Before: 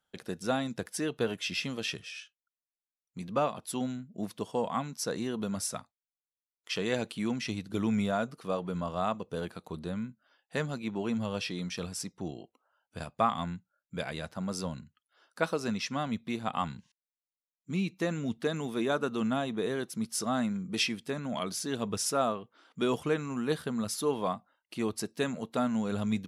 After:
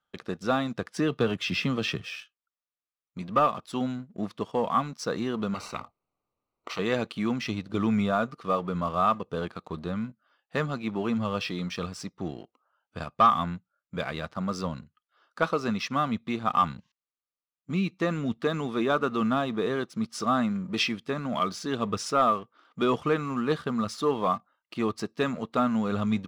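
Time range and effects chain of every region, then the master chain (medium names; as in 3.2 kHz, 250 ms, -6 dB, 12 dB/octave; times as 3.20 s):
0.96–2.16 s: bass shelf 250 Hz +7.5 dB + three bands compressed up and down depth 40%
5.54–6.79 s: boxcar filter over 26 samples + spectrum-flattening compressor 4:1
whole clip: low-pass 4.7 kHz 12 dB/octave; peaking EQ 1.2 kHz +11 dB 0.21 oct; waveshaping leveller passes 1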